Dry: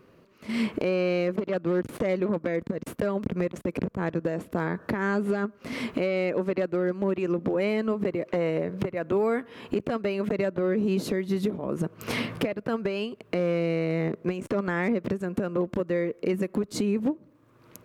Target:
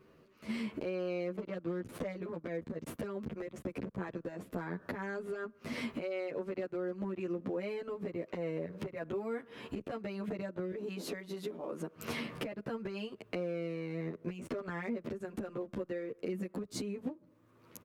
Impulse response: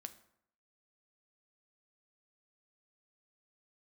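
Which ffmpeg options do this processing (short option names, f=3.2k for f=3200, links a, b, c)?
-filter_complex "[0:a]asettb=1/sr,asplit=3[a][b][c];[a]atrim=end=10.724[d];[b]atrim=start=10.72:end=11.96,asetpts=PTS-STARTPTS,afade=t=in:d=0.004:c=qsin,afade=t=out:st=1.236:d=0.004:c=qsin,highpass=280[e];[c]atrim=start=11.956[f];[d][e]acrossfade=d=0.004:c1=hsin:c2=qsin[g];[g][f]acrossfade=d=0.004:c1=qsin:c2=hsin,asplit=2[h][i];[i]aeval=exprs='sgn(val(0))*max(abs(val(0))-0.00531,0)':c=same,volume=-10dB[j];[h][j]amix=inputs=2:normalize=0,acompressor=threshold=-30dB:ratio=6,asplit=2[k][l];[l]adelay=10.3,afreqshift=-0.33[m];[k][m]amix=inputs=2:normalize=1,volume=-2.5dB"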